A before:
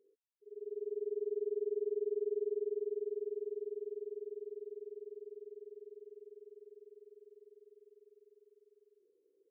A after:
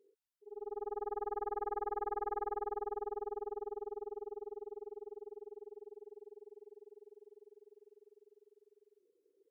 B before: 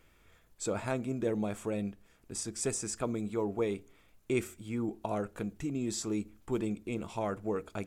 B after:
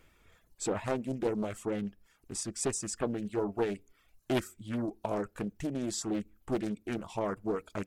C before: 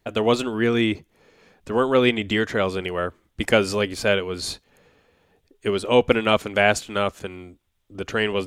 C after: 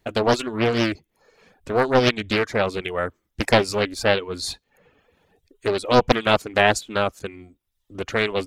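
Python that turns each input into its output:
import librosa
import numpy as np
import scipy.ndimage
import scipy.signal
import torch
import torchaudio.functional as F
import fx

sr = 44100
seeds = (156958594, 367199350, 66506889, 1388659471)

y = fx.dereverb_blind(x, sr, rt60_s=0.7)
y = fx.doppler_dist(y, sr, depth_ms=0.62)
y = y * 10.0 ** (1.5 / 20.0)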